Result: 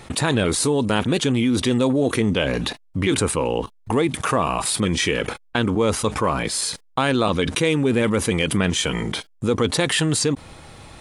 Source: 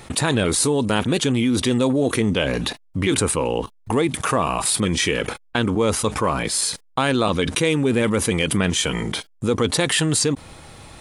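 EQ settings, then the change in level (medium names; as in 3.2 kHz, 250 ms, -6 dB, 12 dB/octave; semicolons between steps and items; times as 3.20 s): treble shelf 8.2 kHz -5.5 dB; 0.0 dB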